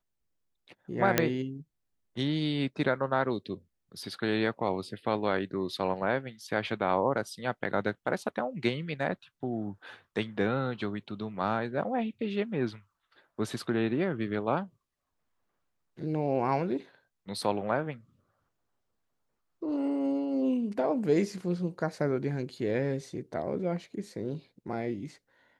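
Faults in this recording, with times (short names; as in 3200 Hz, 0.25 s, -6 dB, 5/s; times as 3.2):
1.18 pop -6 dBFS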